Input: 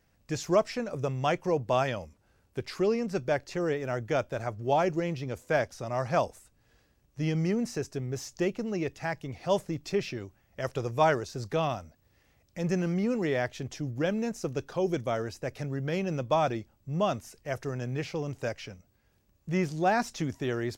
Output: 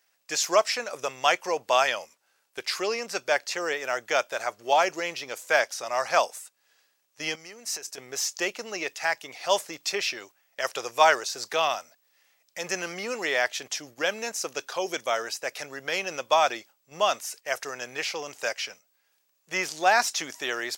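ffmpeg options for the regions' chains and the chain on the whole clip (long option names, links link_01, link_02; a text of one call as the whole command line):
ffmpeg -i in.wav -filter_complex "[0:a]asettb=1/sr,asplit=3[link_01][link_02][link_03];[link_01]atrim=end=7.354[link_04];[link_02]atrim=start=7.35:end=7.98,asetpts=PTS-STARTPTS,afade=type=in:duration=0.004:curve=qsin,afade=type=out:start_time=0.626:duration=0.004:curve=qsin,agate=range=-33dB:threshold=-48dB:ratio=3:release=100:detection=peak,highshelf=frequency=5400:gain=6,acompressor=threshold=-38dB:ratio=12:attack=3.2:release=140:knee=1:detection=peak[link_05];[link_03]atrim=start=7.976[link_06];[link_04][link_05]acrossfade=duration=0.004:curve1=hsin:curve2=qsin[link_07];[link_07][link_06]acrossfade=duration=0.004:curve1=qsin:curve2=hsin,highpass=720,agate=range=-7dB:threshold=-57dB:ratio=16:detection=peak,highshelf=frequency=2200:gain=8,volume=6.5dB" out.wav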